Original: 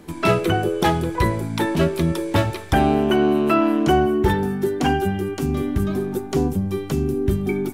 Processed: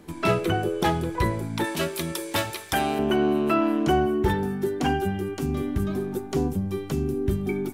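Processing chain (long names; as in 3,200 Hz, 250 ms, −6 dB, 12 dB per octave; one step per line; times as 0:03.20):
0:01.64–0:02.99: spectral tilt +3 dB per octave
level −4.5 dB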